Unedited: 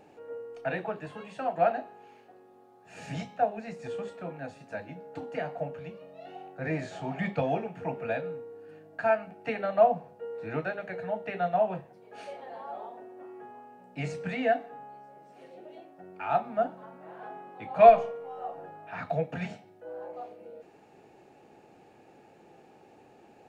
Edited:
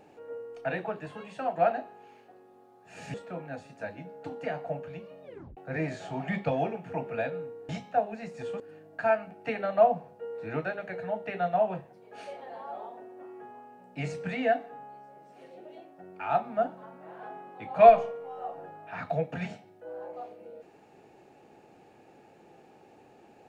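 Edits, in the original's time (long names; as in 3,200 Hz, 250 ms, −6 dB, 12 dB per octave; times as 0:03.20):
0:03.14–0:04.05: move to 0:08.60
0:06.14: tape stop 0.34 s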